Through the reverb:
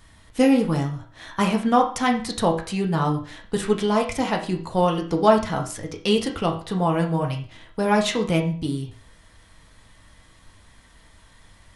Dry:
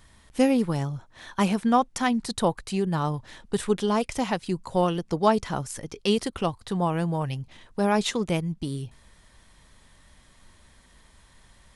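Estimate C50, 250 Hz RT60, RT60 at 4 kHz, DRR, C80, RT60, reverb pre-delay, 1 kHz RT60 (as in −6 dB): 9.5 dB, 0.45 s, 0.40 s, 0.5 dB, 14.0 dB, 0.45 s, 3 ms, 0.40 s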